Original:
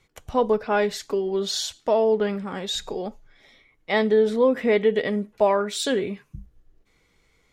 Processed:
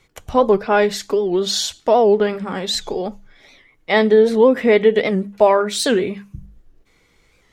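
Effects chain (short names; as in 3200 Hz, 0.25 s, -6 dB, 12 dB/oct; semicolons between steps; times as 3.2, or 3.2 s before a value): notches 50/100/150/200 Hz; record warp 78 rpm, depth 160 cents; gain +6.5 dB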